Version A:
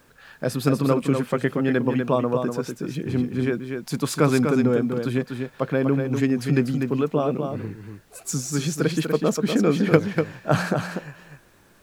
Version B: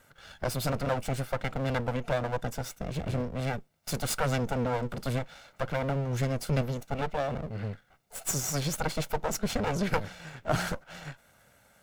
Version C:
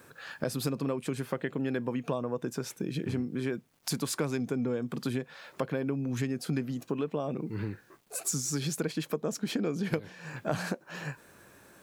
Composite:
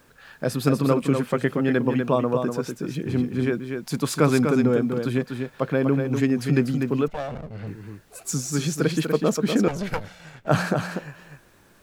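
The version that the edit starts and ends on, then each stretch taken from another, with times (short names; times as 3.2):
A
7.08–7.67 from B
9.68–10.47 from B
not used: C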